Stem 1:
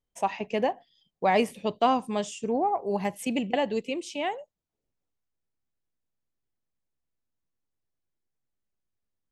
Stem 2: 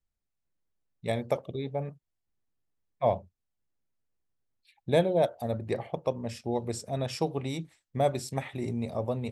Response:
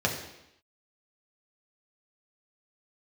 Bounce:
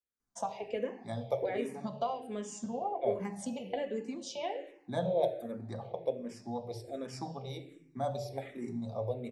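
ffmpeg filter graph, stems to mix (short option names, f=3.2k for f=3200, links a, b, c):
-filter_complex "[0:a]acompressor=threshold=-35dB:ratio=5,adelay=200,volume=-1.5dB,asplit=2[a][b];[b]volume=-11dB[c];[1:a]highpass=120,volume=-9dB,asplit=2[d][e];[e]volume=-11dB[f];[2:a]atrim=start_sample=2205[g];[c][f]amix=inputs=2:normalize=0[h];[h][g]afir=irnorm=-1:irlink=0[i];[a][d][i]amix=inputs=3:normalize=0,bandreject=f=50:t=h:w=6,bandreject=f=100:t=h:w=6,bandreject=f=150:t=h:w=6,bandreject=f=200:t=h:w=6,asplit=2[j][k];[k]afreqshift=-1.3[l];[j][l]amix=inputs=2:normalize=1"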